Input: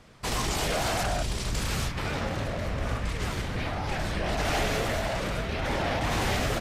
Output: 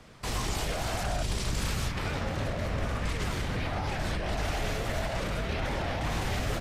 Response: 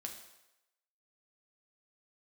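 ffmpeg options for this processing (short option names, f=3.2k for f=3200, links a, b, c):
-filter_complex "[0:a]acrossover=split=120[a][b];[a]aeval=exprs='clip(val(0),-1,0.0178)':c=same[c];[b]alimiter=level_in=2.5dB:limit=-24dB:level=0:latency=1:release=129,volume=-2.5dB[d];[c][d]amix=inputs=2:normalize=0,volume=1.5dB"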